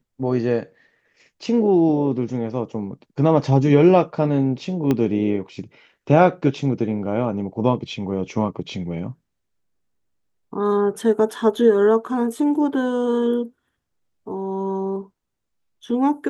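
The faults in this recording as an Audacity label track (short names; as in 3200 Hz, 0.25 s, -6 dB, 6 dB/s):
4.910000	4.910000	pop -9 dBFS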